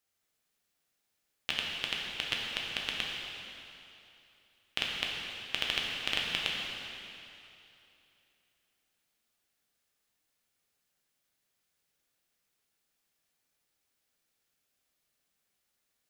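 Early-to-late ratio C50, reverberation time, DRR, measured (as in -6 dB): -0.5 dB, 2.9 s, -2.5 dB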